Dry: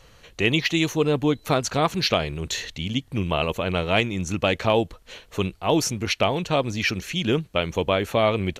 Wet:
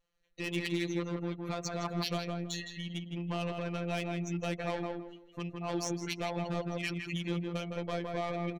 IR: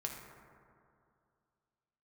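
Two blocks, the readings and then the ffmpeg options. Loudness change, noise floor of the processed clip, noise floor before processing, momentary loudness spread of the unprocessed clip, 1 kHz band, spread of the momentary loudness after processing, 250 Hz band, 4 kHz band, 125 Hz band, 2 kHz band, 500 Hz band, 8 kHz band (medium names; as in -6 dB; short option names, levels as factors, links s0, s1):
-12.5 dB, -60 dBFS, -53 dBFS, 7 LU, -13.0 dB, 5 LU, -10.0 dB, -14.5 dB, -10.0 dB, -13.5 dB, -14.0 dB, -12.0 dB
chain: -filter_complex "[0:a]afftdn=nr=27:nf=-31,lowshelf=f=110:g=-9,bandreject=f=347.9:t=h:w=4,bandreject=f=695.8:t=h:w=4,asplit=2[s0][s1];[s1]acompressor=threshold=0.0178:ratio=5,volume=1.41[s2];[s0][s2]amix=inputs=2:normalize=0,asoftclip=type=tanh:threshold=0.119,afftfilt=real='hypot(re,im)*cos(PI*b)':imag='0':win_size=1024:overlap=0.75,asplit=2[s3][s4];[s4]adelay=162,lowpass=f=2100:p=1,volume=0.708,asplit=2[s5][s6];[s6]adelay=162,lowpass=f=2100:p=1,volume=0.27,asplit=2[s7][s8];[s8]adelay=162,lowpass=f=2100:p=1,volume=0.27,asplit=2[s9][s10];[s10]adelay=162,lowpass=f=2100:p=1,volume=0.27[s11];[s5][s7][s9][s11]amix=inputs=4:normalize=0[s12];[s3][s12]amix=inputs=2:normalize=0,volume=0.376"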